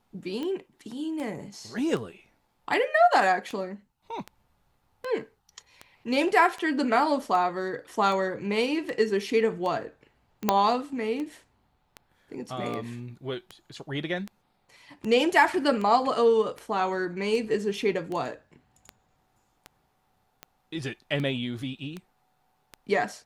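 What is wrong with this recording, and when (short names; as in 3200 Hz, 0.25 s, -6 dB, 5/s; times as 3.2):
tick 78 rpm -22 dBFS
10.49 pop -6 dBFS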